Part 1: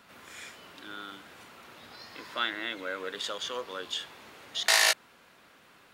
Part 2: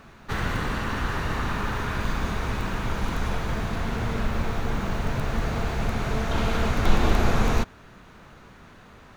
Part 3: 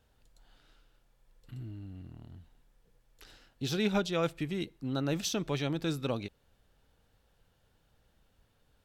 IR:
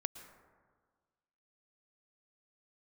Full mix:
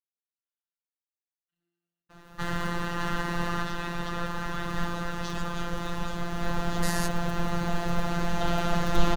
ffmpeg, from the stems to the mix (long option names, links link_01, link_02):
-filter_complex "[0:a]equalizer=frequency=3200:width_type=o:width=1.4:gain=-11.5,adelay=2150,volume=-3dB[link_01];[1:a]adelay=2100,volume=1dB,asplit=2[link_02][link_03];[link_03]volume=-3.5dB[link_04];[2:a]bandpass=frequency=2200:width_type=q:width=0.68:csg=0,volume=-2dB,asplit=2[link_05][link_06];[link_06]apad=whole_len=496648[link_07];[link_02][link_07]sidechaincompress=threshold=-55dB:ratio=8:attack=10:release=198[link_08];[link_04]aecho=0:1:594|1188|1782|2376|2970|3564|4158|4752|5346:1|0.57|0.325|0.185|0.106|0.0602|0.0343|0.0195|0.0111[link_09];[link_01][link_08][link_05][link_09]amix=inputs=4:normalize=0,bandreject=frequency=2300:width=6.3,agate=range=-33dB:threshold=-50dB:ratio=3:detection=peak,afftfilt=real='hypot(re,im)*cos(PI*b)':imag='0':win_size=1024:overlap=0.75"